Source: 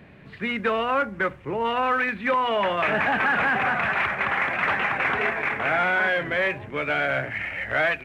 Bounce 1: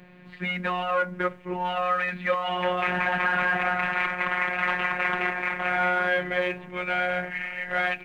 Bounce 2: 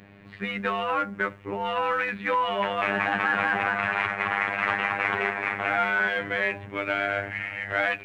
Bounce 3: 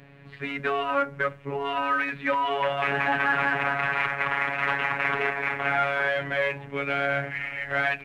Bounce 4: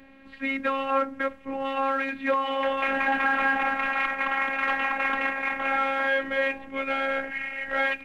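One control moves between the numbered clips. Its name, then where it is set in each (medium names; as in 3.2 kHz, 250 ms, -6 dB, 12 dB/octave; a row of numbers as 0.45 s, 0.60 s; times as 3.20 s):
robot voice, frequency: 180 Hz, 100 Hz, 140 Hz, 270 Hz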